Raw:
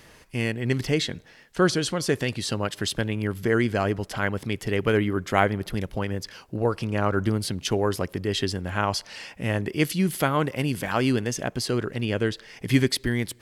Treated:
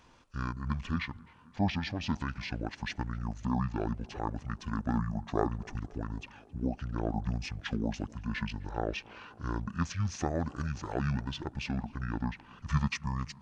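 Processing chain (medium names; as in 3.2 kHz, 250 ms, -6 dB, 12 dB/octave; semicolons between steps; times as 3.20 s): tape echo 265 ms, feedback 74%, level -22.5 dB, low-pass 4.1 kHz; pitch shift -10.5 st; trim -8.5 dB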